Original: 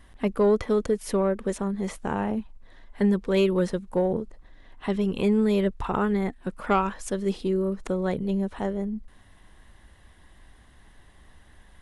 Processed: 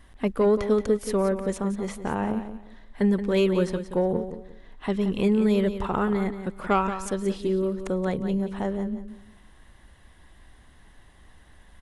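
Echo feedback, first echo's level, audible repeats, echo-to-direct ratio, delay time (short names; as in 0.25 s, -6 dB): 25%, -10.5 dB, 3, -10.0 dB, 0.177 s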